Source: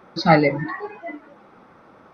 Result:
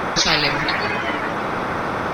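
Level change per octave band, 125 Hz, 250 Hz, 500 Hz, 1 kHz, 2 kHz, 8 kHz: −3.0 dB, −2.0 dB, −1.5 dB, +2.5 dB, +7.0 dB, can't be measured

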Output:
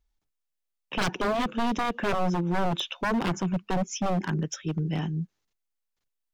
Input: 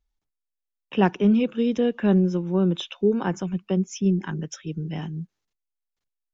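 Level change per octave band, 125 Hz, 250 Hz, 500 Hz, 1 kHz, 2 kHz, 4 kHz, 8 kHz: −3.5 dB, −7.0 dB, −6.0 dB, +4.0 dB, +3.5 dB, +2.5 dB, can't be measured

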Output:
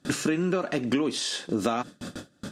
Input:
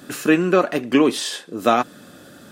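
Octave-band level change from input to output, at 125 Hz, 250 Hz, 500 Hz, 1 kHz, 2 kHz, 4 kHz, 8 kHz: −2.5, −7.5, −10.0, −11.5, −8.5, −4.0, −3.0 decibels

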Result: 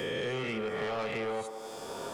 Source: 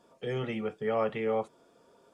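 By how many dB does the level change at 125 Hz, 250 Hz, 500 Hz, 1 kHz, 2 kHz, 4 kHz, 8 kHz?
−3.0 dB, −2.5 dB, −2.0 dB, −1.0 dB, +5.0 dB, +8.0 dB, can't be measured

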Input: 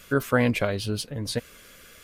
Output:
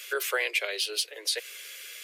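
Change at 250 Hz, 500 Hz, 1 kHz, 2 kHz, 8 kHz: −25.0, −8.0, −6.5, +0.5, +5.0 decibels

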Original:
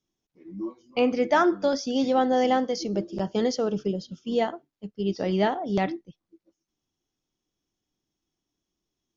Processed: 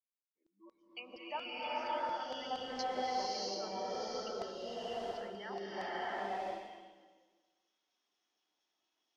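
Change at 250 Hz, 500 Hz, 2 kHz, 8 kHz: −23.0 dB, −15.5 dB, −10.5 dB, can't be measured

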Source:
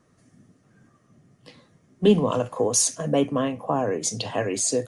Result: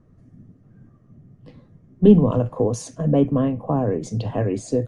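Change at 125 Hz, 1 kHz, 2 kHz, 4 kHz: +9.5 dB, −2.0 dB, can't be measured, below −10 dB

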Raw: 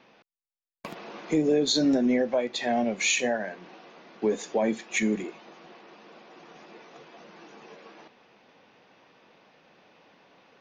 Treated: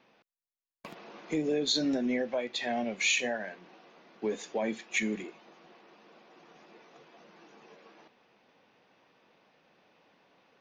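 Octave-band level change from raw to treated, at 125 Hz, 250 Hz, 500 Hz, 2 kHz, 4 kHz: −7.0, −7.0, −6.5, −2.0, −2.0 decibels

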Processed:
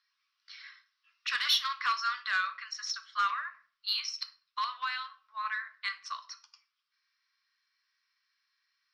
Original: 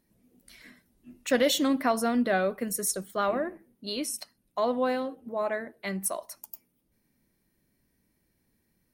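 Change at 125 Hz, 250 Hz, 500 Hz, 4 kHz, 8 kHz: below −35 dB, below −40 dB, below −35 dB, +4.0 dB, −12.0 dB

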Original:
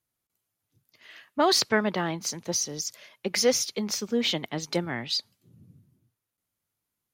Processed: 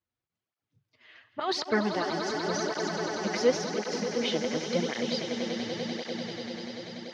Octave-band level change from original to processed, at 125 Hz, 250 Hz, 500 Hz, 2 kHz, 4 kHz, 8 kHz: −1.5, 0.0, +0.5, −1.0, −5.0, −10.0 decibels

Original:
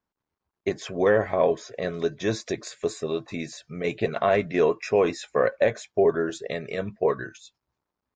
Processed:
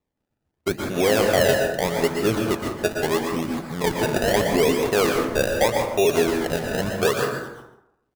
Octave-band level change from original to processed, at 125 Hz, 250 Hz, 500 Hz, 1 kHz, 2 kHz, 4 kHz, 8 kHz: +6.5, +6.0, +2.5, +5.0, +6.5, +11.0, +11.5 decibels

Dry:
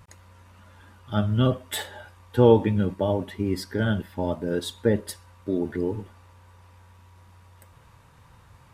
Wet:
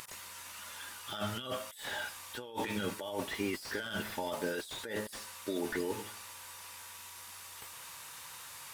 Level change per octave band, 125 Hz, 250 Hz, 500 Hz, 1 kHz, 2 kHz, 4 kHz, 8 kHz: −22.0, −14.5, −14.5, −8.0, −1.5, −3.5, −0.5 decibels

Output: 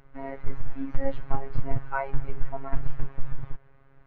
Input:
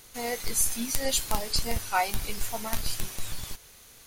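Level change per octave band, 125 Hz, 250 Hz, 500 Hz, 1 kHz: +5.0, 0.0, −1.0, −4.5 decibels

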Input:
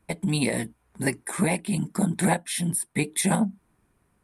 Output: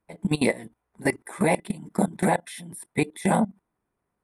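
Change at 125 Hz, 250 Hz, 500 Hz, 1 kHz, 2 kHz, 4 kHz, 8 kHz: −3.0, −0.5, +4.0, +3.5, +0.5, −4.5, −8.0 decibels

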